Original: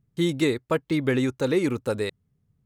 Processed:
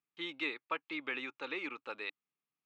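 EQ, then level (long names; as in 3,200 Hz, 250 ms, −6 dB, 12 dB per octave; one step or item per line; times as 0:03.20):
loudspeaker in its box 200–3,200 Hz, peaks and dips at 300 Hz +8 dB, 850 Hz +7 dB, 1,200 Hz +9 dB, 2,500 Hz +8 dB
first difference
+1.5 dB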